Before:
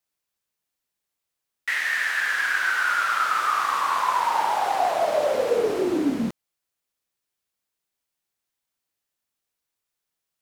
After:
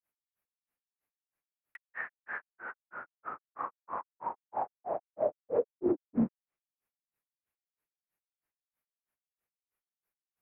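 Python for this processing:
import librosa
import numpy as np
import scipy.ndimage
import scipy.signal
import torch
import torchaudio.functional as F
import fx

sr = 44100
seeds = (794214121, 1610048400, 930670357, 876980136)

y = fx.env_lowpass_down(x, sr, base_hz=500.0, full_db=-19.0)
y = fx.granulator(y, sr, seeds[0], grain_ms=163.0, per_s=3.1, spray_ms=100.0, spread_st=0)
y = fx.band_shelf(y, sr, hz=5200.0, db=-16.0, octaves=1.7)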